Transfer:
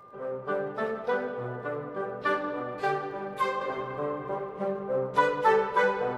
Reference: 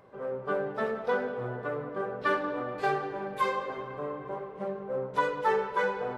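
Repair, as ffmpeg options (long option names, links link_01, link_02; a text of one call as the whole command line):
ffmpeg -i in.wav -af "adeclick=threshold=4,bandreject=frequency=1200:width=30,asetnsamples=nb_out_samples=441:pad=0,asendcmd='3.61 volume volume -4dB',volume=0dB" out.wav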